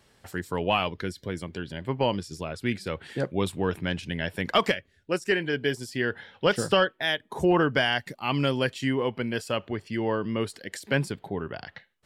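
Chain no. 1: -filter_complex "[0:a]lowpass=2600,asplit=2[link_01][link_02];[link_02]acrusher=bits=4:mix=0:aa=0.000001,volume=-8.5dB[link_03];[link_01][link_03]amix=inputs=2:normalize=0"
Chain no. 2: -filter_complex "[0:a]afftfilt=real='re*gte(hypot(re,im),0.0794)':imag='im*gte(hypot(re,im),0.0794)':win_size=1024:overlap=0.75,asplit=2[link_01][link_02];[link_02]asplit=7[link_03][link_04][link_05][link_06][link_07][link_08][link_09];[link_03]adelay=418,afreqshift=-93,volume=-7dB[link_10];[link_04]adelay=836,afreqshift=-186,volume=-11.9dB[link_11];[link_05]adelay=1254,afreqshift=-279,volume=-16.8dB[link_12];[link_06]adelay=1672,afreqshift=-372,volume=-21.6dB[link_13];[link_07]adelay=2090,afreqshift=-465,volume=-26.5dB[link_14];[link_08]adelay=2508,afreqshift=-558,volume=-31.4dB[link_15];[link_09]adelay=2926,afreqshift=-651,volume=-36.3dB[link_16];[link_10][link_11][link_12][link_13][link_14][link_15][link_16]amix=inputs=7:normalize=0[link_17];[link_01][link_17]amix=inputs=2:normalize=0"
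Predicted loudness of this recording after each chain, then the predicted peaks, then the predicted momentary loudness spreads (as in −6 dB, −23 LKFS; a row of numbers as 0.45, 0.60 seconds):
−25.5, −27.5 LKFS; −9.0, −11.0 dBFS; 11, 10 LU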